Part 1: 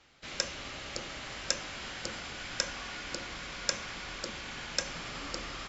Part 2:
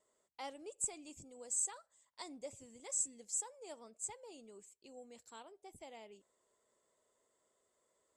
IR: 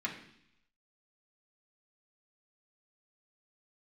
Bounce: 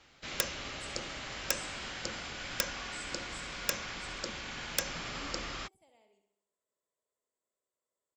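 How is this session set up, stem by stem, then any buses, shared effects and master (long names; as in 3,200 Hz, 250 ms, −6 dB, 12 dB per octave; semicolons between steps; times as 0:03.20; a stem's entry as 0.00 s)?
−0.5 dB, 0.00 s, no send, no echo send, speech leveller within 3 dB 2 s; wrap-around overflow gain 13.5 dB
−14.5 dB, 0.00 s, no send, echo send −8 dB, no processing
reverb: not used
echo: repeating echo 65 ms, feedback 57%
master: no processing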